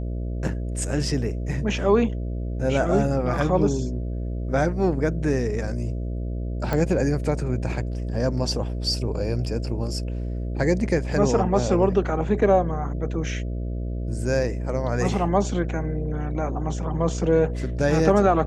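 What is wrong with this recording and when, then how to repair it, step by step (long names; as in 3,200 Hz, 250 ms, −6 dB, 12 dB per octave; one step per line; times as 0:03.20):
mains buzz 60 Hz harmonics 11 −28 dBFS
0:06.73: click −12 dBFS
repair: click removal
hum removal 60 Hz, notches 11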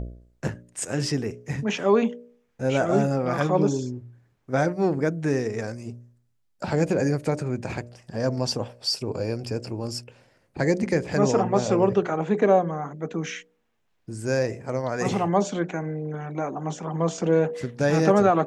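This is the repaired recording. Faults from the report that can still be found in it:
none of them is left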